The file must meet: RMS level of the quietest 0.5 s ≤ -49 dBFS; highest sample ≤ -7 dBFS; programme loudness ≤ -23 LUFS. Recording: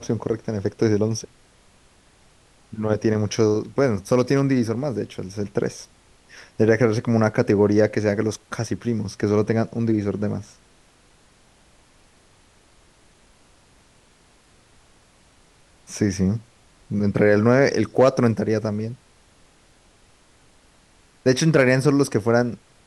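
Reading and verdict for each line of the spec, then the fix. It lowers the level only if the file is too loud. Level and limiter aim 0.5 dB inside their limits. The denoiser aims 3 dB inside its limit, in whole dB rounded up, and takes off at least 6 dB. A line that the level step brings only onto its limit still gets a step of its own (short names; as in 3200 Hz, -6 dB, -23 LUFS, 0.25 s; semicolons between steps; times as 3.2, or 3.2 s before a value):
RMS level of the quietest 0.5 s -56 dBFS: OK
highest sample -4.5 dBFS: fail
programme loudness -21.5 LUFS: fail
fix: gain -2 dB; limiter -7.5 dBFS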